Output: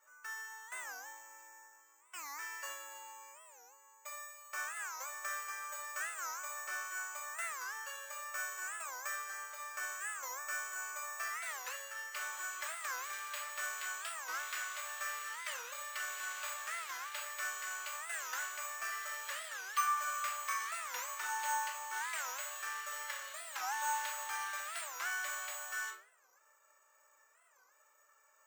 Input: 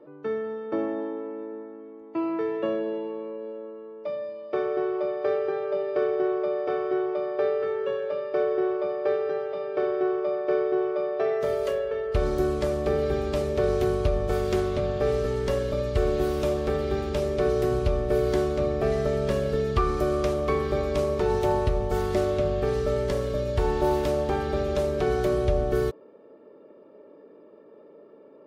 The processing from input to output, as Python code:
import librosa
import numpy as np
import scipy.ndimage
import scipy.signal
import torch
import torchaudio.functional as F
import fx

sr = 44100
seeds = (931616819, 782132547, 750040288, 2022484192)

p1 = np.repeat(scipy.signal.resample_poly(x, 1, 6), 6)[:len(x)]
p2 = scipy.signal.sosfilt(scipy.signal.butter(4, 1400.0, 'highpass', fs=sr, output='sos'), p1)
p3 = fx.high_shelf(p2, sr, hz=2900.0, db=-9.0)
p4 = fx.room_shoebox(p3, sr, seeds[0], volume_m3=610.0, walls='furnished', distance_m=2.5)
p5 = 10.0 ** (-31.0 / 20.0) * np.tanh(p4 / 10.0 ** (-31.0 / 20.0))
p6 = p4 + (p5 * 10.0 ** (-11.0 / 20.0))
p7 = fx.record_warp(p6, sr, rpm=45.0, depth_cents=250.0)
y = p7 * 10.0 ** (-1.0 / 20.0)